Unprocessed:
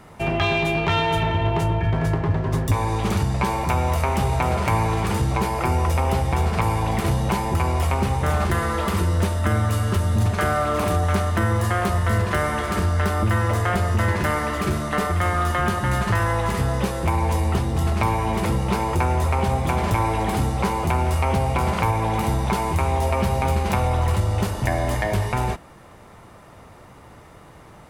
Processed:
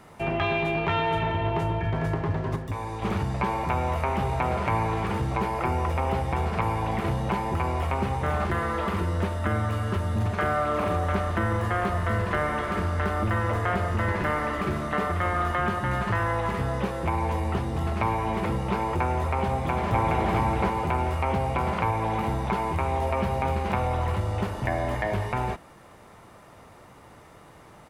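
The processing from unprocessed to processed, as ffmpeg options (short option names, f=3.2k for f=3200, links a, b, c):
-filter_complex "[0:a]asettb=1/sr,asplit=3[a][b][c];[a]atrim=end=10.624[d];[b]atrim=start=10.62:end=15.55,asetpts=PTS-STARTPTS,afade=t=in:d=0.004:c=qsin,afade=t=out:st=4.926:d=0.004:c=qsin,asplit=5[e][f][g][h][i];[f]adelay=149,afreqshift=-32,volume=-13.5dB[j];[g]adelay=298,afreqshift=-64,volume=-20.6dB[k];[h]adelay=447,afreqshift=-96,volume=-27.8dB[l];[i]adelay=596,afreqshift=-128,volume=-34.9dB[m];[e][j][k][l][m]amix=inputs=5:normalize=0,atrim=end_sample=217413[n];[c]atrim=start=15.546[o];[d][n]acrossfade=d=0.004:c1=hsin:c2=qsin[p];[p][o]acrossfade=d=0.004:c1=qsin:c2=hsin,asplit=2[q][r];[r]afade=t=in:st=19.5:d=0.01,afade=t=out:st=20.27:d=0.01,aecho=0:1:420|840|1260|1680:0.841395|0.252419|0.0757256|0.0227177[s];[q][s]amix=inputs=2:normalize=0,asplit=3[t][u][v];[t]atrim=end=2.562[w];[u]atrim=start=2.558:end=3.022,asetpts=PTS-STARTPTS,volume=-5.5dB[x];[v]atrim=start=3.018[y];[w][x]acrossfade=d=0.004:c1=hsin:c2=hsin[z];[z][y]acrossfade=d=0.004:c1=hsin:c2=hsin,acrossover=split=3100[aa][ab];[ab]acompressor=threshold=-49dB:ratio=4:attack=1:release=60[ac];[aa][ac]amix=inputs=2:normalize=0,lowshelf=f=140:g=-5.5,volume=-3dB"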